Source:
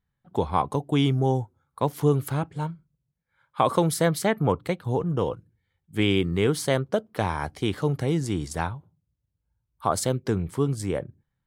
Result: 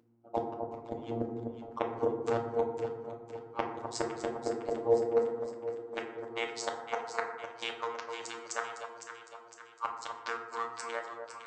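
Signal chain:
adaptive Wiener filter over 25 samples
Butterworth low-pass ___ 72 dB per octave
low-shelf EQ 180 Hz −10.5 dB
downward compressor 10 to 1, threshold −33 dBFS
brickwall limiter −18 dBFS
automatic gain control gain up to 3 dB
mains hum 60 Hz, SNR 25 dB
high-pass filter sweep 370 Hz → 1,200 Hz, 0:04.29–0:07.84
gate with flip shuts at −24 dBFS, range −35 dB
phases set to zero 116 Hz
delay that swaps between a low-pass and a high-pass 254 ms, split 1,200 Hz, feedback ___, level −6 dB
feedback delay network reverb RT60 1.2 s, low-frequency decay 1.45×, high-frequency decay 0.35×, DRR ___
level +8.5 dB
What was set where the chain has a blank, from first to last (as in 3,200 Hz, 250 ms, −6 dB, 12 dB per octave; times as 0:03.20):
7,800 Hz, 71%, 1.5 dB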